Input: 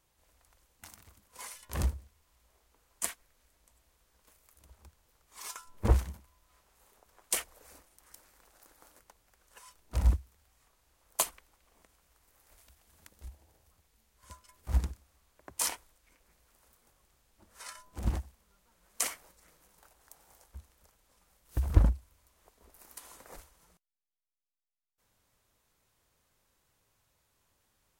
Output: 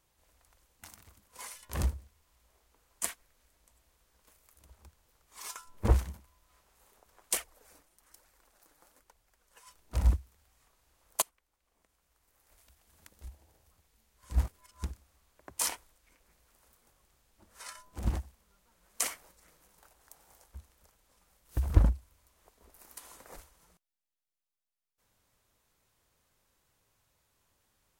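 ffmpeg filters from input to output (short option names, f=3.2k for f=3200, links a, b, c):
-filter_complex "[0:a]asettb=1/sr,asplit=3[a][b][c];[a]atrim=end=7.374[d];[b]atrim=start=7.37:end=9.67,asetpts=PTS-STARTPTS,afade=t=in:d=0.004:c=qsin,afade=t=out:st=2.296:d=0.004:c=qsin,flanger=delay=1:depth=6.1:regen=45:speed=1.1:shape=triangular[e];[c]atrim=start=9.666[f];[d][e]acrossfade=d=0.004:c1=hsin:c2=qsin[g];[g][f]acrossfade=d=0.004:c1=qsin:c2=hsin,asplit=4[h][i][j][k];[h]atrim=end=11.22,asetpts=PTS-STARTPTS,afade=t=out:st=11.216:d=0.004:c=hsin:silence=0.0668344[l];[i]atrim=start=11.22:end=14.322,asetpts=PTS-STARTPTS,afade=t=in:d=1.93:silence=0.0668344[m];[j]atrim=start=14.318:end=14.832,asetpts=PTS-STARTPTS,areverse[n];[k]atrim=start=14.828[o];[l][m]concat=n=2:v=0:a=1[p];[p][n]acrossfade=d=0.004:c1=hsin:c2=hsin[q];[q][o]acrossfade=d=0.004:c1=hsin:c2=hsin"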